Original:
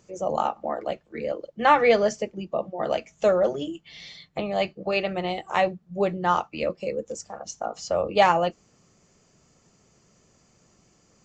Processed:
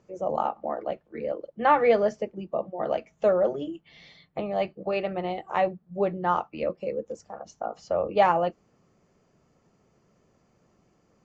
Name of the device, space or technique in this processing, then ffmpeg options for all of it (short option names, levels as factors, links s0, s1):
through cloth: -af "lowpass=6900,lowshelf=f=200:g=-5,highshelf=f=2500:g=-15"